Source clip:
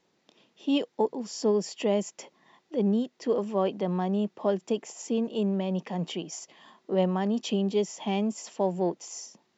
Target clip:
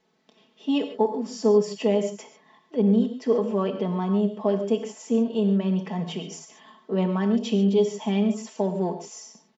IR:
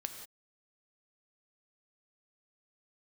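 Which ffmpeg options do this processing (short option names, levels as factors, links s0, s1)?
-filter_complex "[0:a]highshelf=f=6200:g=-9,aecho=1:1:4.6:0.75[s0];[1:a]atrim=start_sample=2205,afade=t=out:st=0.2:d=0.01,atrim=end_sample=9261[s1];[s0][s1]afir=irnorm=-1:irlink=0,volume=1.33"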